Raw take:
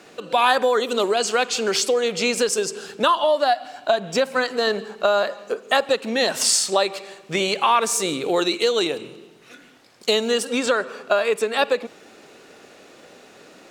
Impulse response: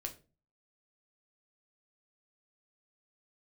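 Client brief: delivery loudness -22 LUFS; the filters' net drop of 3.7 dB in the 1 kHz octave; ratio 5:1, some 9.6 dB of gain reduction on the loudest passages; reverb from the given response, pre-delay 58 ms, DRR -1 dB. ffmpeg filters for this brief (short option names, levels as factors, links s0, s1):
-filter_complex "[0:a]equalizer=f=1000:t=o:g=-5,acompressor=threshold=0.0447:ratio=5,asplit=2[s0][s1];[1:a]atrim=start_sample=2205,adelay=58[s2];[s1][s2]afir=irnorm=-1:irlink=0,volume=1.33[s3];[s0][s3]amix=inputs=2:normalize=0,volume=1.78"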